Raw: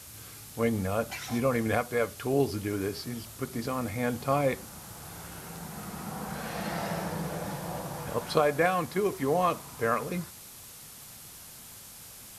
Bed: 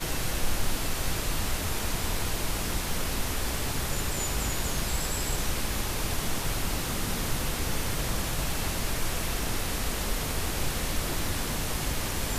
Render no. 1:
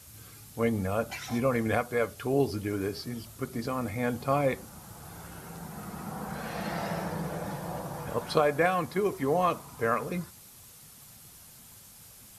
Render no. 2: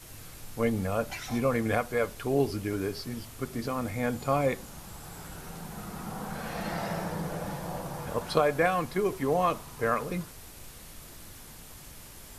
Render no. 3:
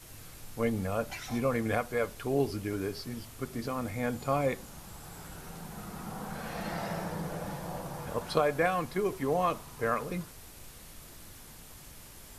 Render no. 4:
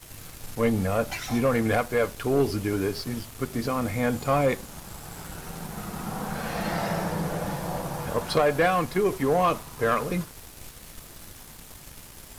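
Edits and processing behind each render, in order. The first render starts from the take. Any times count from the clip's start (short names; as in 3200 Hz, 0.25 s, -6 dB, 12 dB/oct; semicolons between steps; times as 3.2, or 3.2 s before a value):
denoiser 6 dB, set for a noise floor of -48 dBFS
add bed -19.5 dB
gain -2.5 dB
sample leveller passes 2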